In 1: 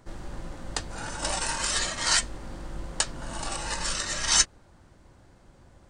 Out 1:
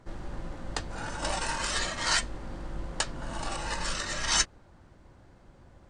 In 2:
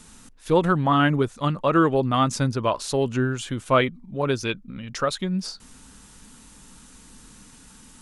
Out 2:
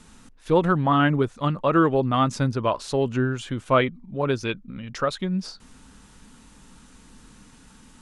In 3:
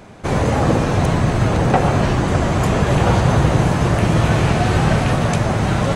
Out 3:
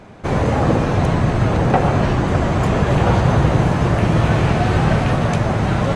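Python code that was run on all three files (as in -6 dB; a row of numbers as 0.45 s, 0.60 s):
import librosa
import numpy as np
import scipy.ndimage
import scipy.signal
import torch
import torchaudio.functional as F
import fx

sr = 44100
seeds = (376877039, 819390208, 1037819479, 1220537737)

y = fx.lowpass(x, sr, hz=3700.0, slope=6)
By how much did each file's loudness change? -4.5 LU, -0.5 LU, 0.0 LU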